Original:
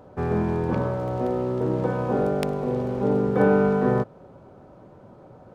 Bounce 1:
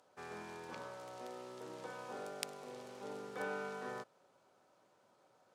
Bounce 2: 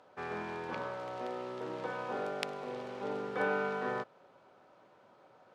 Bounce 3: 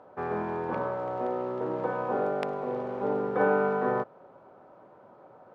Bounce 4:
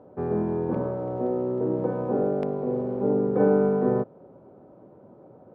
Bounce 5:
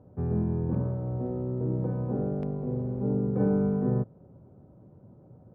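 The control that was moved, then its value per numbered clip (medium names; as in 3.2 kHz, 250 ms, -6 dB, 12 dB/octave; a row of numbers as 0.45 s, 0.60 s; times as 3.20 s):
band-pass filter, frequency: 7.9 kHz, 3.1 kHz, 1.1 kHz, 360 Hz, 110 Hz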